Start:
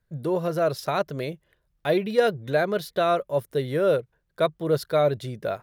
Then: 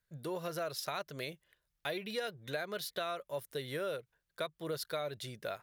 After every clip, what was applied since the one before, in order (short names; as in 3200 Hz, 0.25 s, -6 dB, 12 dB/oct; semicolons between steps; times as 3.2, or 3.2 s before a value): tilt shelf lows -7 dB, about 1100 Hz; compressor, threshold -27 dBFS, peak gain reduction 9 dB; gain -7 dB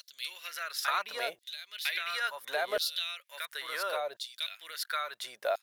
reverse echo 1.004 s -4 dB; LFO high-pass saw down 0.72 Hz 610–4400 Hz; gain +4.5 dB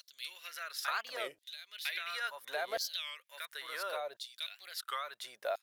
record warp 33 1/3 rpm, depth 250 cents; gain -5 dB